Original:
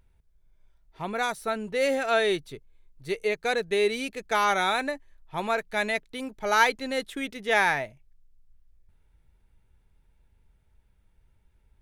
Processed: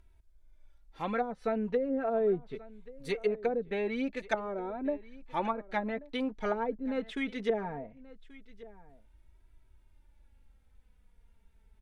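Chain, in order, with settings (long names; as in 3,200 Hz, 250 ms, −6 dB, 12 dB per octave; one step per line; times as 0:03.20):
flanger 0.21 Hz, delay 3 ms, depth 1.7 ms, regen +7%
treble cut that deepens with the level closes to 380 Hz, closed at −25.5 dBFS
single-tap delay 1,133 ms −20 dB
level +3 dB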